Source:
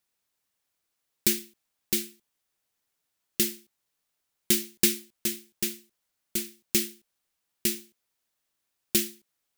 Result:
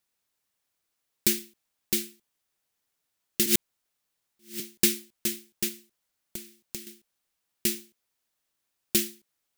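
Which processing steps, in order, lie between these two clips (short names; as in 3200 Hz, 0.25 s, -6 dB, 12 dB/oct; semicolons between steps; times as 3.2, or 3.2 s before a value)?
3.46–4.6 reverse; 5.68–6.87 compressor 12:1, threshold -35 dBFS, peak gain reduction 16.5 dB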